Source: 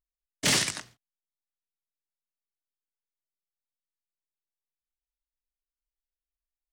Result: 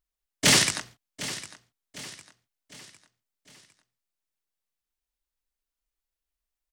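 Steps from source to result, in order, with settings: feedback echo 0.755 s, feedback 45%, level -15 dB; gain +5 dB

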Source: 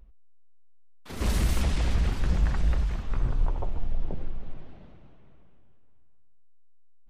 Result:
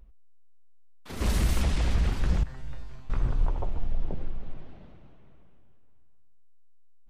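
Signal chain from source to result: 2.43–3.1 resonator 130 Hz, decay 0.65 s, harmonics all, mix 90%

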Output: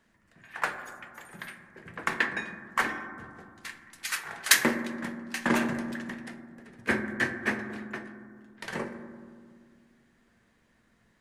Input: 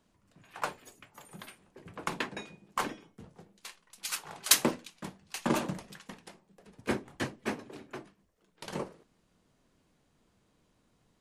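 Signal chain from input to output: bell 1800 Hz +14 dB 0.64 oct; reverb RT60 2.0 s, pre-delay 4 ms, DRR 6.5 dB

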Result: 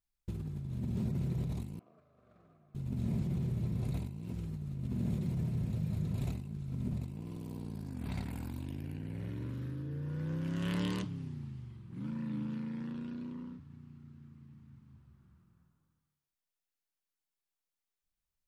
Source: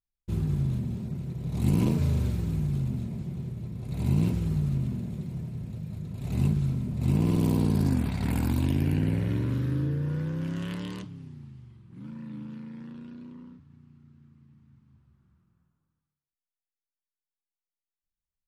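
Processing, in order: negative-ratio compressor -34 dBFS, ratio -1; 1.79–2.75 double band-pass 900 Hz, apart 0.76 oct; gain -3.5 dB

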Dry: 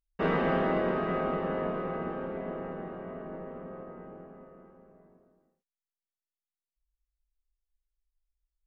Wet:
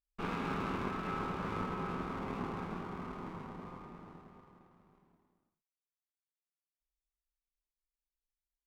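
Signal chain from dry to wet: minimum comb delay 0.81 ms; Doppler pass-by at 2.77, 13 m/s, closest 14 m

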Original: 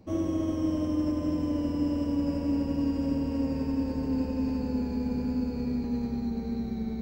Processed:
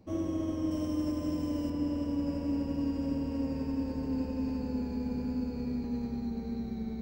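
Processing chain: 0.71–1.7 high shelf 5300 Hz +10 dB; gain -4 dB

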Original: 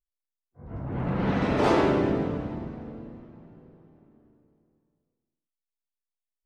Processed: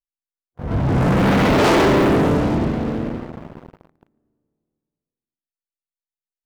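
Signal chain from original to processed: sample leveller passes 5; gain -1 dB

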